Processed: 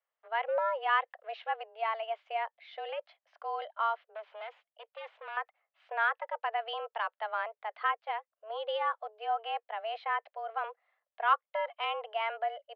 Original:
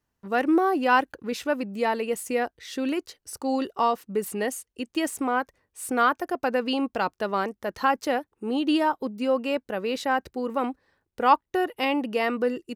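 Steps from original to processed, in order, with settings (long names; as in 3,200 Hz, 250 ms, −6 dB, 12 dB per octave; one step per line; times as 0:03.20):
0:04.15–0:05.37: tube saturation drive 30 dB, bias 0.4
single-sideband voice off tune +220 Hz 330–3,200 Hz
0:07.90–0:08.50: expander for the loud parts 1.5 to 1, over −42 dBFS
level −7.5 dB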